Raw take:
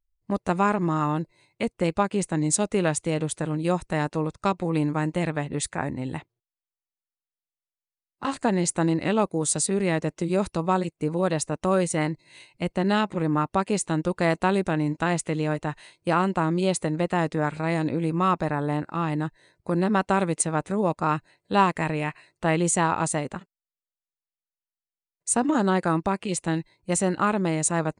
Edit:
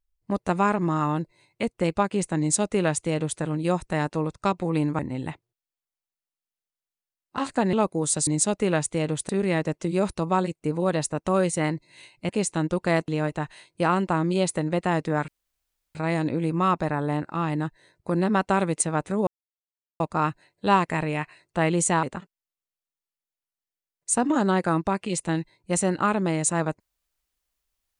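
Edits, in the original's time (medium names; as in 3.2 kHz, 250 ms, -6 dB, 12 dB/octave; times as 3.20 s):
2.39–3.41 s: copy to 9.66 s
4.99–5.86 s: delete
8.60–9.12 s: delete
12.66–13.63 s: delete
14.42–15.35 s: delete
17.55 s: insert room tone 0.67 s
20.87 s: insert silence 0.73 s
22.90–23.22 s: delete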